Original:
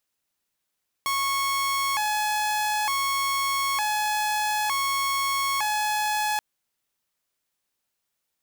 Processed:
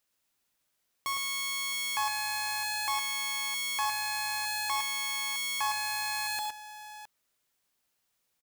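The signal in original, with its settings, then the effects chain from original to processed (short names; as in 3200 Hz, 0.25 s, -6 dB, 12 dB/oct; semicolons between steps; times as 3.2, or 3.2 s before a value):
siren hi-lo 847–1100 Hz 0.55/s saw -20.5 dBFS 5.33 s
limiter -26.5 dBFS; on a send: tapped delay 64/107/115/664 ms -9/-6/-8.5/-14.5 dB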